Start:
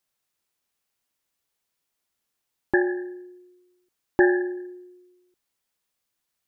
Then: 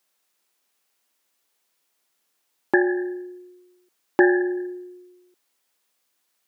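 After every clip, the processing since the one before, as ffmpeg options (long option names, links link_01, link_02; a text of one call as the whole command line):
ffmpeg -i in.wav -filter_complex "[0:a]highpass=250,asplit=2[link_01][link_02];[link_02]acompressor=threshold=-29dB:ratio=6,volume=3dB[link_03];[link_01][link_03]amix=inputs=2:normalize=0" out.wav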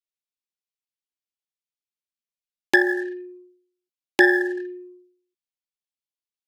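ffmpeg -i in.wav -af "anlmdn=1,aexciter=amount=8.6:drive=8.7:freq=2100,volume=-1.5dB" out.wav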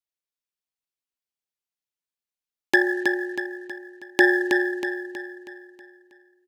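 ffmpeg -i in.wav -af "aecho=1:1:320|640|960|1280|1600|1920:0.531|0.244|0.112|0.0517|0.0238|0.0109,volume=-1.5dB" out.wav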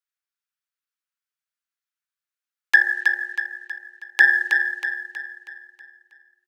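ffmpeg -i in.wav -af "highpass=frequency=1400:width_type=q:width=2.8,volume=-1.5dB" out.wav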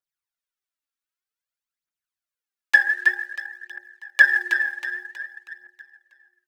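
ffmpeg -i in.wav -af "aphaser=in_gain=1:out_gain=1:delay=3.8:decay=0.66:speed=0.53:type=triangular,volume=-4dB" out.wav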